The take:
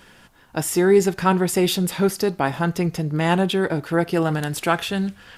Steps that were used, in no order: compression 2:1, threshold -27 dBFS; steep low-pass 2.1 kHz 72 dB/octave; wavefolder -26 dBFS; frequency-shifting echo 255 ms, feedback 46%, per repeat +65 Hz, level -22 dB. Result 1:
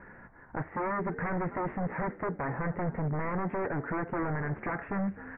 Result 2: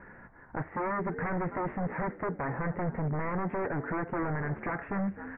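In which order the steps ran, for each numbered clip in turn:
compression > frequency-shifting echo > wavefolder > steep low-pass; frequency-shifting echo > compression > wavefolder > steep low-pass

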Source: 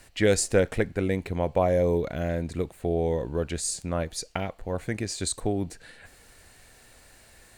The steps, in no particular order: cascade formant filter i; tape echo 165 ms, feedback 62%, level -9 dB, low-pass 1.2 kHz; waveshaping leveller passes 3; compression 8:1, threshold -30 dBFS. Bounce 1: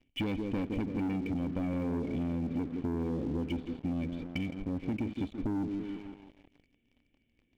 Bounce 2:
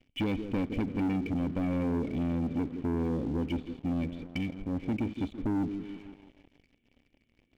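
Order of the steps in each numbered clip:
cascade formant filter > tape echo > waveshaping leveller > compression; tape echo > cascade formant filter > compression > waveshaping leveller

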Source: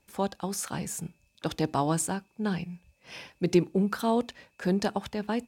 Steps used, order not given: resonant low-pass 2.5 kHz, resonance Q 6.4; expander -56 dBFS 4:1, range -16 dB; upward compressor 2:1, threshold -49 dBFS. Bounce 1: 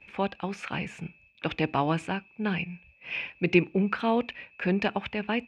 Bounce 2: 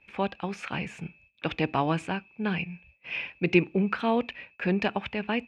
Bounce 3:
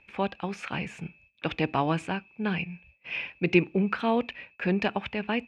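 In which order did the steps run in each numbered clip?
upward compressor > resonant low-pass > expander; upward compressor > expander > resonant low-pass; expander > upward compressor > resonant low-pass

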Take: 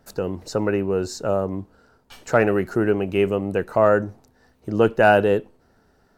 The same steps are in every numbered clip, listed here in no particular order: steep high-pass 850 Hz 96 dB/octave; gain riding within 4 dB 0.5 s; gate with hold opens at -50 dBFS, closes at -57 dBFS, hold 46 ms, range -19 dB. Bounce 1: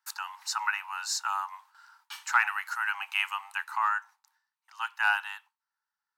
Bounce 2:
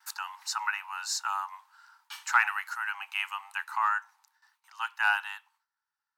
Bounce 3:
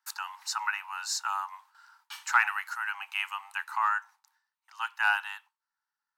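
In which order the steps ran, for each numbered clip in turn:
steep high-pass > gain riding > gate with hold; gain riding > gate with hold > steep high-pass; gain riding > steep high-pass > gate with hold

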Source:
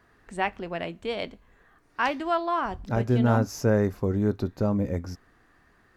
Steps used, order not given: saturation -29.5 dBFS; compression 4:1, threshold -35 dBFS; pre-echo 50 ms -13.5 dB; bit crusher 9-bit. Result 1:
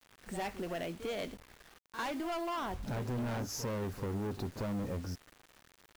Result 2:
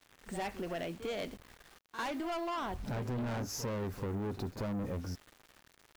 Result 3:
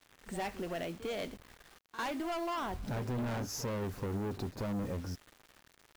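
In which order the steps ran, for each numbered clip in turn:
saturation > pre-echo > compression > bit crusher; bit crusher > saturation > pre-echo > compression; saturation > compression > bit crusher > pre-echo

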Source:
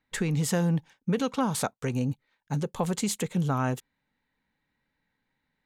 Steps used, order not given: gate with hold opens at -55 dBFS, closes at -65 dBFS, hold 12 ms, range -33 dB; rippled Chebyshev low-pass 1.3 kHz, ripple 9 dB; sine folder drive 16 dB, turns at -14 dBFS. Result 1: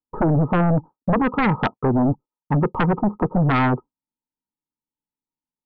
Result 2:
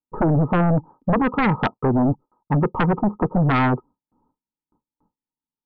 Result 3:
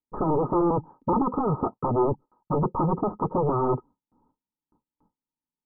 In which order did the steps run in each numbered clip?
rippled Chebyshev low-pass > gate with hold > sine folder; rippled Chebyshev low-pass > sine folder > gate with hold; sine folder > rippled Chebyshev low-pass > gate with hold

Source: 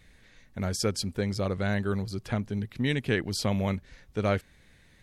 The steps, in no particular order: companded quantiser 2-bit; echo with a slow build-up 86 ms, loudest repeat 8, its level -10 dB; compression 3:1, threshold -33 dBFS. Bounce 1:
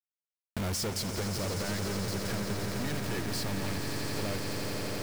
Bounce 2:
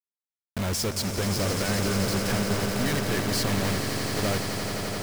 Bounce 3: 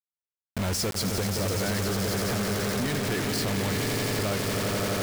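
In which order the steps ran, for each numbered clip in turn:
companded quantiser > echo with a slow build-up > compression; compression > companded quantiser > echo with a slow build-up; echo with a slow build-up > compression > companded quantiser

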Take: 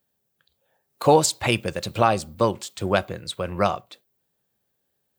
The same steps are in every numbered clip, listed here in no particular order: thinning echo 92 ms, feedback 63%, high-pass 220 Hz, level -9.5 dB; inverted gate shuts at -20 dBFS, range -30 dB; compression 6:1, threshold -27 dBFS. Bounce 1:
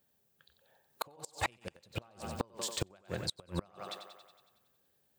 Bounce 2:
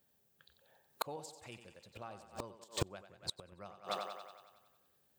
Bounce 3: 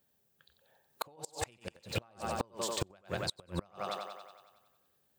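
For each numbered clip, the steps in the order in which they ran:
compression > thinning echo > inverted gate; thinning echo > inverted gate > compression; thinning echo > compression > inverted gate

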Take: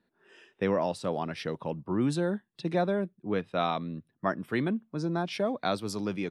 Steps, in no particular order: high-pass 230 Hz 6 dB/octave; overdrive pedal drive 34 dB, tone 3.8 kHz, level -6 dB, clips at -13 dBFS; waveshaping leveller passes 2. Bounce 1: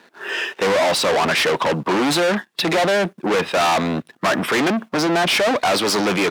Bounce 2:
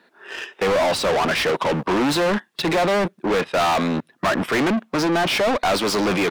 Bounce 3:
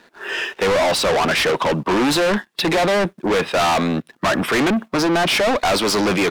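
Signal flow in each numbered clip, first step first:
overdrive pedal > waveshaping leveller > high-pass; waveshaping leveller > high-pass > overdrive pedal; high-pass > overdrive pedal > waveshaping leveller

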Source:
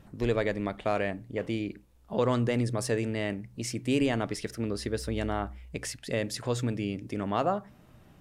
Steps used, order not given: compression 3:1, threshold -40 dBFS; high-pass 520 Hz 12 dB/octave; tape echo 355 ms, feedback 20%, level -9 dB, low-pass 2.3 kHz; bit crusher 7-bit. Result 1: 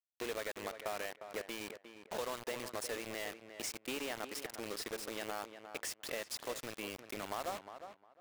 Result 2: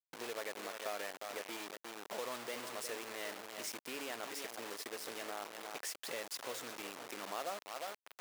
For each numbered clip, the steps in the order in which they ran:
high-pass > compression > bit crusher > tape echo; tape echo > compression > bit crusher > high-pass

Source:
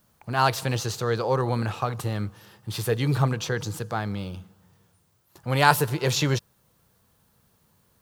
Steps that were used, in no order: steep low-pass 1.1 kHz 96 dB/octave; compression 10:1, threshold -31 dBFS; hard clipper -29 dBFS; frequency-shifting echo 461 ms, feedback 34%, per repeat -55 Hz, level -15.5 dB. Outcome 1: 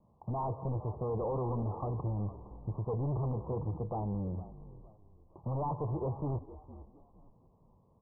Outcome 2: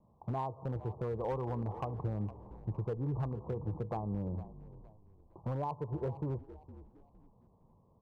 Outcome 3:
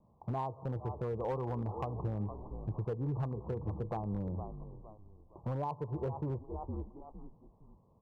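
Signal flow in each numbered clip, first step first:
hard clipper > compression > frequency-shifting echo > steep low-pass; compression > steep low-pass > hard clipper > frequency-shifting echo; frequency-shifting echo > compression > steep low-pass > hard clipper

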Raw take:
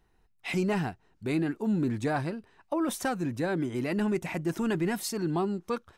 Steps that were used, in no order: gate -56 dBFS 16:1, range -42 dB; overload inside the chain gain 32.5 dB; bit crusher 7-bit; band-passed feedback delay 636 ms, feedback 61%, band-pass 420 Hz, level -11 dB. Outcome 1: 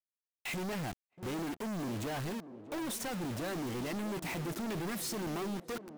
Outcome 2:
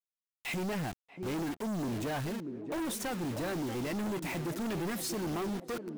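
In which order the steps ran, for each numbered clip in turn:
overload inside the chain > bit crusher > band-passed feedback delay > gate; gate > bit crusher > band-passed feedback delay > overload inside the chain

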